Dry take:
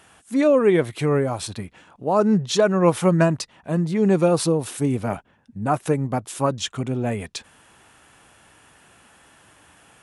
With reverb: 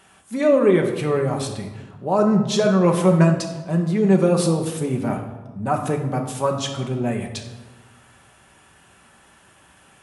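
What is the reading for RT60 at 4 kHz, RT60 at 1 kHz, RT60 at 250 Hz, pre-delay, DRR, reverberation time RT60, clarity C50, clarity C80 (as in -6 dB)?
0.75 s, 1.1 s, 1.6 s, 5 ms, 1.5 dB, 1.2 s, 7.5 dB, 9.5 dB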